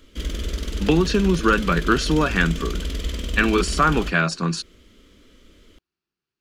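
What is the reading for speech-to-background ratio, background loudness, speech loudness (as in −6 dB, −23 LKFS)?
8.5 dB, −29.5 LKFS, −21.0 LKFS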